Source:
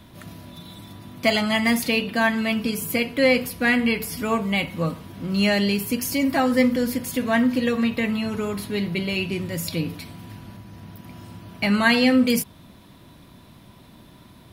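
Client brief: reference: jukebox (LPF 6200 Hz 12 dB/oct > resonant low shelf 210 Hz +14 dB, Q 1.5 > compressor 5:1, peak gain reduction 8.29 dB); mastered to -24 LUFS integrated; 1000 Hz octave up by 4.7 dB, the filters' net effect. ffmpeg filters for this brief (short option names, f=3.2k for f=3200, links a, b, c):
-af "lowpass=6.2k,lowshelf=f=210:t=q:w=1.5:g=14,equalizer=f=1k:t=o:g=7,acompressor=threshold=-17dB:ratio=5,volume=-1.5dB"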